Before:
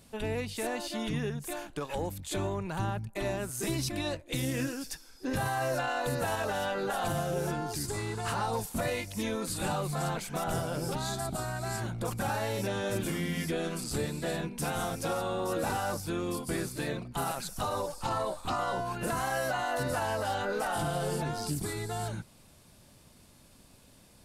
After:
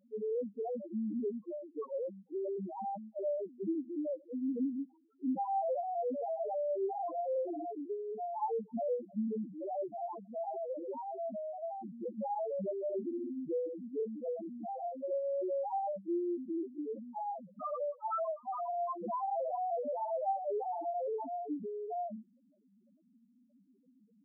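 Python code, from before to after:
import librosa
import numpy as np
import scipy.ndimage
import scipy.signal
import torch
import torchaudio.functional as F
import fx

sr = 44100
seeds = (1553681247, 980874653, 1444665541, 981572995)

y = fx.brickwall_bandpass(x, sr, low_hz=180.0, high_hz=1400.0)
y = fx.spec_topn(y, sr, count=1)
y = y * librosa.db_to_amplitude(6.5)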